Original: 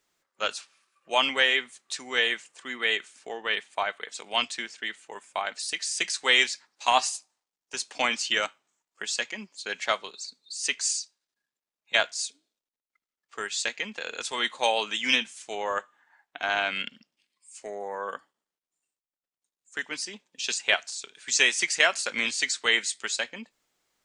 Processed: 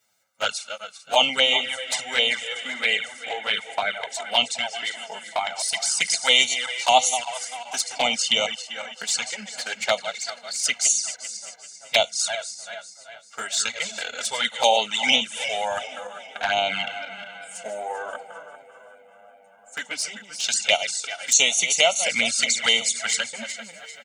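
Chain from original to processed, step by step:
feedback delay that plays each chunk backwards 196 ms, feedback 59%, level −10.5 dB
high-pass filter 86 Hz
high-shelf EQ 6,600 Hz +6 dB
comb filter 1.4 ms, depth 86%
dynamic equaliser 1,500 Hz, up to −4 dB, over −37 dBFS, Q 1.9
on a send: feedback echo with a low-pass in the loop 386 ms, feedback 80%, low-pass 3,800 Hz, level −20.5 dB
on the sum: flanger swept by the level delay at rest 9.4 ms, full sweep at −19.5 dBFS
level +5 dB

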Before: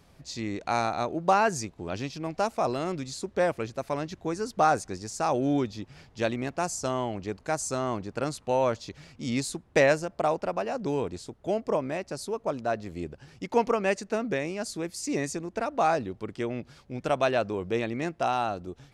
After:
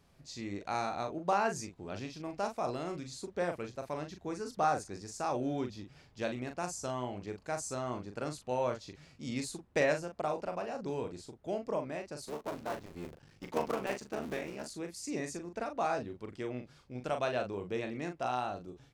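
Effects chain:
0:12.20–0:14.71: sub-harmonics by changed cycles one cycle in 3, muted
double-tracking delay 40 ms −6.5 dB
level −8.5 dB

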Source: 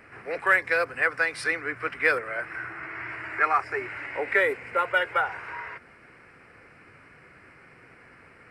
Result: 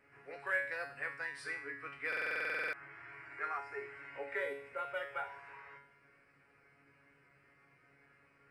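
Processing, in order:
tuned comb filter 140 Hz, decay 0.52 s, harmonics all, mix 90%
buffer that repeats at 0:02.08, samples 2,048, times 13
level −3 dB

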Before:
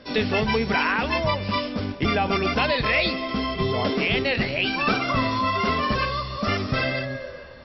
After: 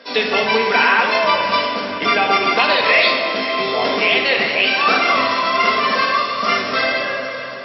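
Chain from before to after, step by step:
high-pass filter 490 Hz 12 dB per octave
feedback delay with all-pass diffusion 560 ms, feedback 53%, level −13.5 dB
rectangular room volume 1,800 cubic metres, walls mixed, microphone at 1.7 metres
level +6.5 dB

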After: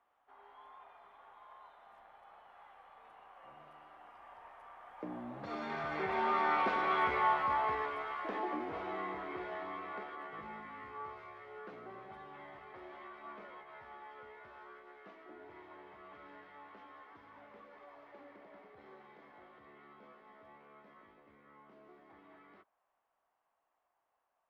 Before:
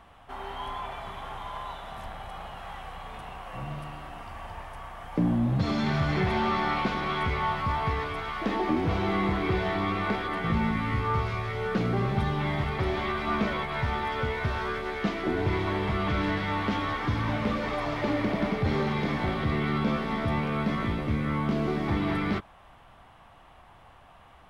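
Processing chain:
source passing by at 0:07.03, 10 m/s, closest 7.1 metres
three-way crossover with the lows and the highs turned down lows −23 dB, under 330 Hz, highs −13 dB, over 2,300 Hz

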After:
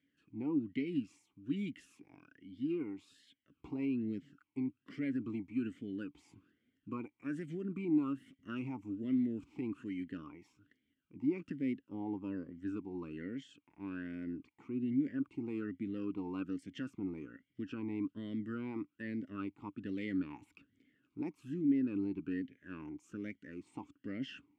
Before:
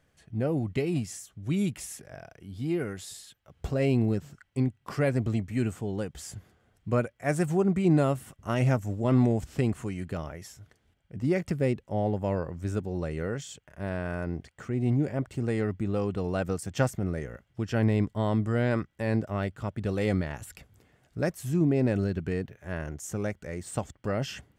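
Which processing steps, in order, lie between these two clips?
brickwall limiter −19.5 dBFS, peak gain reduction 8.5 dB
formant filter swept between two vowels i-u 1.2 Hz
level +3 dB

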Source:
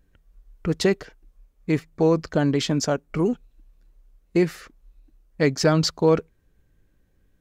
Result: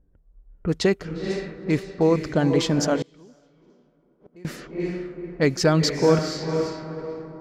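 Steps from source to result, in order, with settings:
feedback delay with all-pass diffusion 470 ms, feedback 45%, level −6 dB
low-pass that shuts in the quiet parts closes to 720 Hz, open at −19.5 dBFS
0:03.02–0:04.45: gate with flip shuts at −28 dBFS, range −28 dB

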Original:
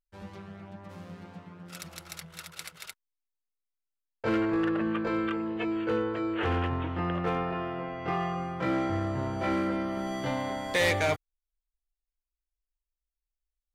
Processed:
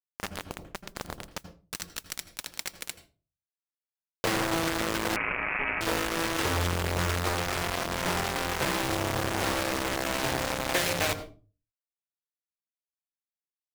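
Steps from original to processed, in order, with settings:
noise gate with hold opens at −38 dBFS
dynamic equaliser 220 Hz, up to −4 dB, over −49 dBFS, Q 5.1
in parallel at +1.5 dB: brickwall limiter −31.5 dBFS, peak gain reduction 11 dB
on the sum: downward compressor 12 to 1, threshold −31 dBFS, peak gain reduction 11 dB
bit reduction 5 bits
noise that follows the level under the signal 14 dB
on a send at −12 dB: convolution reverb RT60 0.35 s, pre-delay 76 ms
0:05.16–0:05.81: on the sum: voice inversion scrambler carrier 2,600 Hz
highs frequency-modulated by the lows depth 0.67 ms
level +4.5 dB

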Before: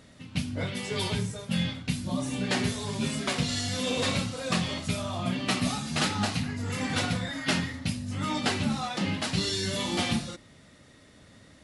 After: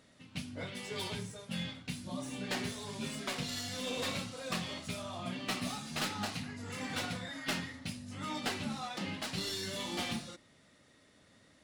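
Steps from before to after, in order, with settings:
stylus tracing distortion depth 0.037 ms
low-shelf EQ 150 Hz −9 dB
level −7.5 dB

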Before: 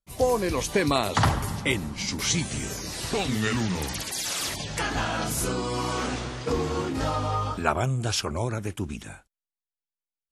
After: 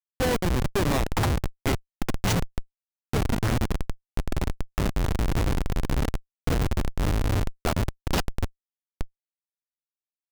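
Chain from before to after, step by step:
turntable brake at the end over 2.23 s
comparator with hysteresis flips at −20.5 dBFS
level +5.5 dB

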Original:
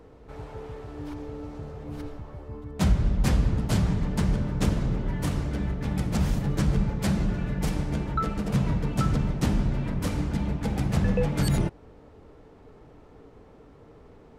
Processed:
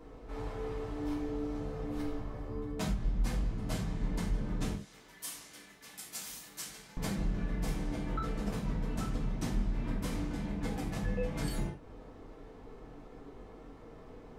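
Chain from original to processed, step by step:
0:04.75–0:06.97: first difference
downward compressor 8 to 1, threshold −31 dBFS, peak gain reduction 15.5 dB
reverb whose tail is shaped and stops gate 130 ms falling, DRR −4 dB
level −4.5 dB

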